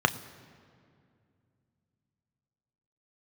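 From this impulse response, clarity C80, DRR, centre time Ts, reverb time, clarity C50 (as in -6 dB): 17.0 dB, 9.0 dB, 8 ms, 2.3 s, 16.0 dB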